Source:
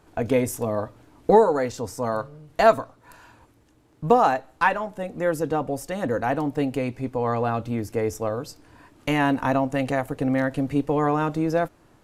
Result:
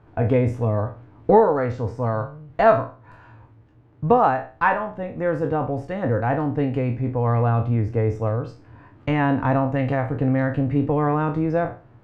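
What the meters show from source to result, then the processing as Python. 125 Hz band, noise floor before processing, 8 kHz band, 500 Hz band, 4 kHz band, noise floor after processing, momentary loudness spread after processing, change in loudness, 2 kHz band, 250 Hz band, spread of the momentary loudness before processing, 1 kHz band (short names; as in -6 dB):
+9.0 dB, -58 dBFS, under -20 dB, +1.0 dB, n/a, -52 dBFS, 10 LU, +2.0 dB, 0.0 dB, +1.5 dB, 11 LU, +1.0 dB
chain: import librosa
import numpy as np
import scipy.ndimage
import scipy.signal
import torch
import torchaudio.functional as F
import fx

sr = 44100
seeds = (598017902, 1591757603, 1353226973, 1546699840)

y = fx.spec_trails(x, sr, decay_s=0.36)
y = scipy.signal.sosfilt(scipy.signal.butter(2, 2100.0, 'lowpass', fs=sr, output='sos'), y)
y = fx.peak_eq(y, sr, hz=110.0, db=12.5, octaves=0.71)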